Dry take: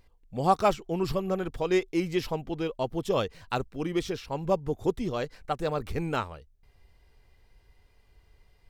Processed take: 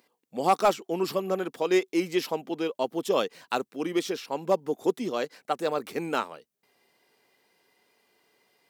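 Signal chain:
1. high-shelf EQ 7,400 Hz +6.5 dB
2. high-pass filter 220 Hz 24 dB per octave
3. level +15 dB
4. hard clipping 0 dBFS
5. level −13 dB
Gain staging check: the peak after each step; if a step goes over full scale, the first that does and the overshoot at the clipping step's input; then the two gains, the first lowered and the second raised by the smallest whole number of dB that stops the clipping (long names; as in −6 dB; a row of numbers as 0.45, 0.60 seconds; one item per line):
−10.0, −9.0, +6.0, 0.0, −13.0 dBFS
step 3, 6.0 dB
step 3 +9 dB, step 5 −7 dB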